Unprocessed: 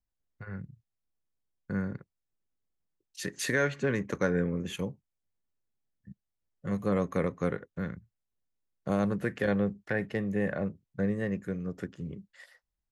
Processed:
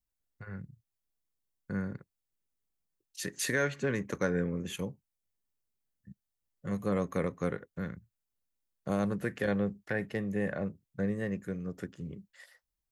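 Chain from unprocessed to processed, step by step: treble shelf 7.1 kHz +8 dB; trim -2.5 dB

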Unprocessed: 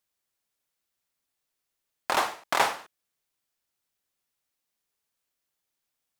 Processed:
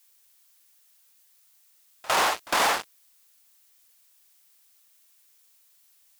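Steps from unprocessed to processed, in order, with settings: fuzz box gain 41 dB, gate -42 dBFS; added noise blue -55 dBFS; bass shelf 160 Hz -11 dB; on a send: reverse echo 56 ms -21 dB; on the sum: loudspeaker Doppler distortion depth 0.29 ms; trim -6.5 dB

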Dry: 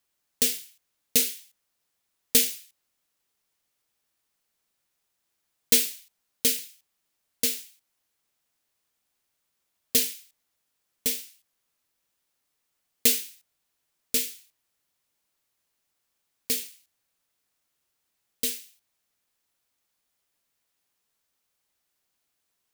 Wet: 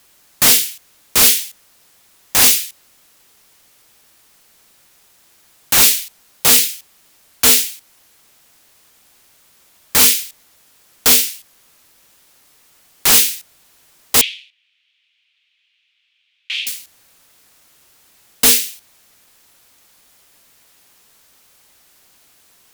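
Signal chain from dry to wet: in parallel at +2 dB: peak limiter -14.5 dBFS, peak gain reduction 10 dB; on the sum: sine folder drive 18 dB, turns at -1 dBFS; 14.21–16.67 s: Butterworth band-pass 2.8 kHz, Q 2.3; trim -3.5 dB

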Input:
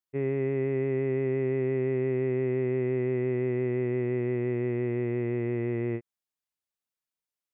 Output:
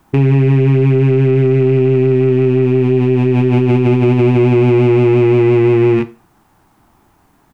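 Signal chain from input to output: rattle on loud lows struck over -42 dBFS, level -24 dBFS; treble shelf 2.2 kHz +9 dB; early reflections 23 ms -4.5 dB, 36 ms -8 dB; on a send at -16 dB: reverberation RT60 0.30 s, pre-delay 3 ms; on the sum: resampled via 22.05 kHz; added noise white -68 dBFS; FFT filter 330 Hz 0 dB, 520 Hz -15 dB, 820 Hz -2 dB, 2.4 kHz -21 dB, 4.1 kHz -27 dB; loudness maximiser +33.5 dB; trim -3.5 dB

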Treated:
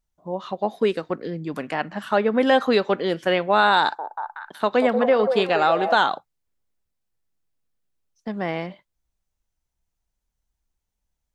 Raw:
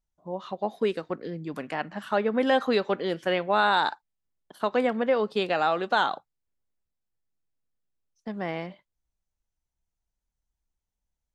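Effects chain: 3.80–5.95 s: repeats whose band climbs or falls 186 ms, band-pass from 570 Hz, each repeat 0.7 oct, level -4 dB; trim +5 dB

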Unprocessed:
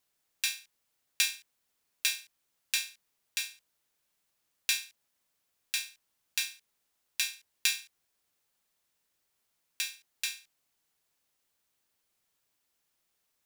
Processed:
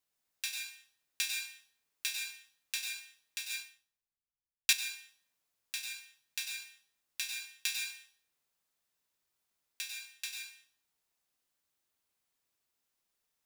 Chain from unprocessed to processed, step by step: plate-style reverb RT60 0.61 s, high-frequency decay 0.85×, pre-delay 85 ms, DRR 1.5 dB; 3.49–4.73 s: three bands expanded up and down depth 100%; trim -7 dB

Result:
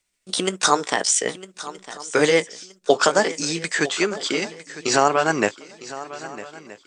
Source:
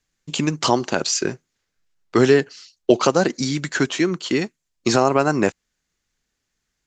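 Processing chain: pitch bend over the whole clip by +4 st ending unshifted; bass shelf 430 Hz -11.5 dB; shuffle delay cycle 1273 ms, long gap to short 3:1, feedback 31%, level -16 dB; trim +4 dB

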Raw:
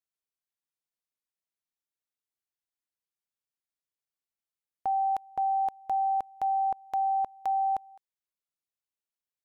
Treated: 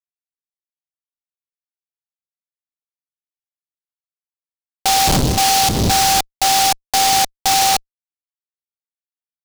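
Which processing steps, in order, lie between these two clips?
5.07–6.18 s: wind noise 210 Hz -27 dBFS; fuzz box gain 47 dB, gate -45 dBFS; delay time shaken by noise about 4.5 kHz, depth 0.15 ms

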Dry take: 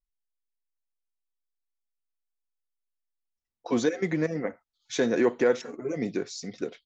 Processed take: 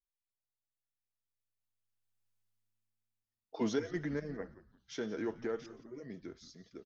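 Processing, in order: Doppler pass-by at 2.34 s, 29 m/s, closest 9.5 m; frequency-shifting echo 173 ms, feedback 32%, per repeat -110 Hz, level -16.5 dB; trim +4 dB

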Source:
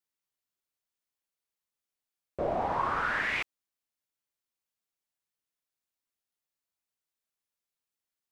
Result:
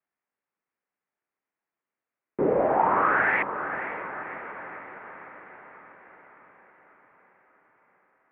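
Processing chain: mistuned SSB -180 Hz 360–2400 Hz; echo that smears into a reverb 537 ms, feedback 59%, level -10 dB; trim +8 dB

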